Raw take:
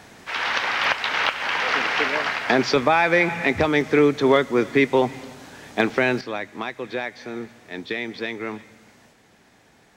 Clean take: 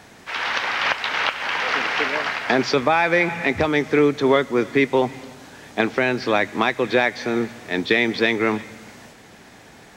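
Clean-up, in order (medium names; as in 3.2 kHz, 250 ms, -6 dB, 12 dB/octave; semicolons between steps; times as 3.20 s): clip repair -6 dBFS; interpolate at 0.84/1.26/2.76/3.81/4.69/5.46/5.90/7.46 s, 1.6 ms; gain correction +10 dB, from 6.21 s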